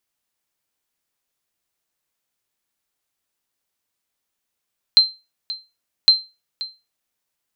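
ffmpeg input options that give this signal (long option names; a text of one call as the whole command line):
ffmpeg -f lavfi -i "aevalsrc='0.668*(sin(2*PI*4120*mod(t,1.11))*exp(-6.91*mod(t,1.11)/0.26)+0.141*sin(2*PI*4120*max(mod(t,1.11)-0.53,0))*exp(-6.91*max(mod(t,1.11)-0.53,0)/0.26))':duration=2.22:sample_rate=44100" out.wav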